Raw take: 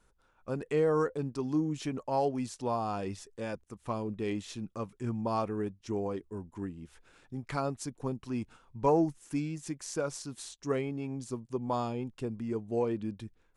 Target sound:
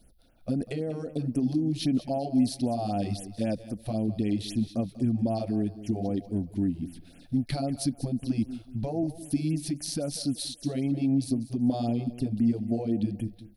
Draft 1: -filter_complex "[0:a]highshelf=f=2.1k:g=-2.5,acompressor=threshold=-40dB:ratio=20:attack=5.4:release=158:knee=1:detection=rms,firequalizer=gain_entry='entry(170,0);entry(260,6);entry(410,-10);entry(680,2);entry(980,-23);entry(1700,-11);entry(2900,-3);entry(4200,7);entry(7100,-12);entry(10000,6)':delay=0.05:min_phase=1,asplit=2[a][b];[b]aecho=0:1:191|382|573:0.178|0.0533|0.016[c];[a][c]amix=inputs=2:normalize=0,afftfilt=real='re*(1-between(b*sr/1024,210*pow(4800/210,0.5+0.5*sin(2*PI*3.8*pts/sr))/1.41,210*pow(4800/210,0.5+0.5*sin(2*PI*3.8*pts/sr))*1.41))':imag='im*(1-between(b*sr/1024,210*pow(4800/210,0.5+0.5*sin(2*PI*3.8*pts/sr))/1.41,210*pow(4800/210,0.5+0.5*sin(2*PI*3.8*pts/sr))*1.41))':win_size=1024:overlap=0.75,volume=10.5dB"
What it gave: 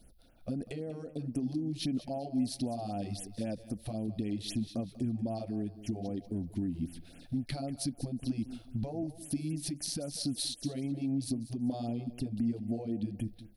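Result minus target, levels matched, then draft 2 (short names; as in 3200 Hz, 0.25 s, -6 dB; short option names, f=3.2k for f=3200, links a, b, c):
compressor: peak gain reduction +7.5 dB
-filter_complex "[0:a]highshelf=f=2.1k:g=-2.5,acompressor=threshold=-32dB:ratio=20:attack=5.4:release=158:knee=1:detection=rms,firequalizer=gain_entry='entry(170,0);entry(260,6);entry(410,-10);entry(680,2);entry(980,-23);entry(1700,-11);entry(2900,-3);entry(4200,7);entry(7100,-12);entry(10000,6)':delay=0.05:min_phase=1,asplit=2[a][b];[b]aecho=0:1:191|382|573:0.178|0.0533|0.016[c];[a][c]amix=inputs=2:normalize=0,afftfilt=real='re*(1-between(b*sr/1024,210*pow(4800/210,0.5+0.5*sin(2*PI*3.8*pts/sr))/1.41,210*pow(4800/210,0.5+0.5*sin(2*PI*3.8*pts/sr))*1.41))':imag='im*(1-between(b*sr/1024,210*pow(4800/210,0.5+0.5*sin(2*PI*3.8*pts/sr))/1.41,210*pow(4800/210,0.5+0.5*sin(2*PI*3.8*pts/sr))*1.41))':win_size=1024:overlap=0.75,volume=10.5dB"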